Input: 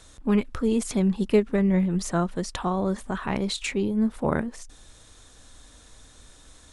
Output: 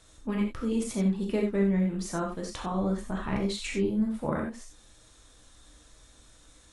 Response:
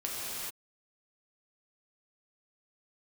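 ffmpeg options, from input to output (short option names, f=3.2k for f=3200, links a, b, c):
-filter_complex "[0:a]asettb=1/sr,asplit=3[a][b][c];[a]atrim=end=2.724[d];[b]atrim=start=2.72:end=4,asetpts=PTS-STARTPTS,afade=t=in:d=0.004:c=qsin,afade=t=out:st=1.276:d=0.004:c=qsin,lowshelf=f=130:g=8[e];[c]atrim=start=3.996[f];[d][e]acrossfade=d=0.004:c1=hsin:c2=qsin[g];[g][f]acrossfade=d=0.004:c1=qsin:c2=hsin[h];[1:a]atrim=start_sample=2205,atrim=end_sample=4410[i];[h][i]afir=irnorm=-1:irlink=0,volume=-6dB"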